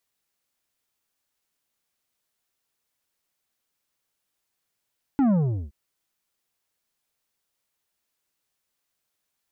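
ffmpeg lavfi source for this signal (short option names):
-f lavfi -i "aevalsrc='0.126*clip((0.52-t)/0.4,0,1)*tanh(2.66*sin(2*PI*290*0.52/log(65/290)*(exp(log(65/290)*t/0.52)-1)))/tanh(2.66)':d=0.52:s=44100"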